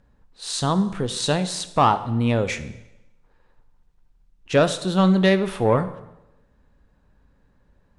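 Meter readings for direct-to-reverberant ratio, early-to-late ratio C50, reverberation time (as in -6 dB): 11.0 dB, 14.0 dB, 0.95 s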